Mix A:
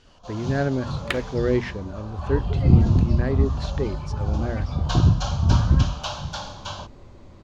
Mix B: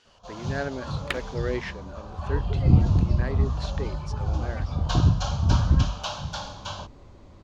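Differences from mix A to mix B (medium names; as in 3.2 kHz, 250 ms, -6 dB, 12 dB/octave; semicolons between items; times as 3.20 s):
speech: add high-pass 750 Hz 6 dB/octave; reverb: off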